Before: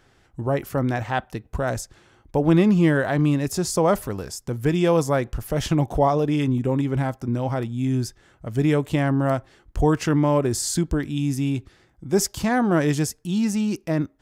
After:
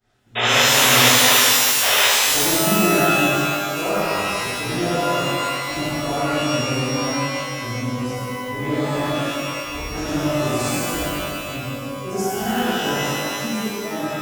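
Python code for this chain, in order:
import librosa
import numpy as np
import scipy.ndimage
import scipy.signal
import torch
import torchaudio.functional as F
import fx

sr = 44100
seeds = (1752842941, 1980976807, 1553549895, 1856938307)

y = fx.frame_reverse(x, sr, frame_ms=221.0)
y = fx.spec_paint(y, sr, seeds[0], shape='noise', start_s=0.35, length_s=1.7, low_hz=380.0, high_hz=3800.0, level_db=-17.0)
y = fx.step_gate(y, sr, bpm=124, pattern='x.xxx.xxx.x....x', floor_db=-60.0, edge_ms=4.5)
y = fx.rev_shimmer(y, sr, seeds[1], rt60_s=2.1, semitones=12, shimmer_db=-2, drr_db=-11.0)
y = y * 10.0 ** (-10.0 / 20.0)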